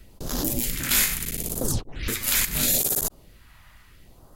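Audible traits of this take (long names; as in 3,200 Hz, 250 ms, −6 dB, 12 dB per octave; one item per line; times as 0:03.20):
phaser sweep stages 2, 0.75 Hz, lowest notch 390–2,200 Hz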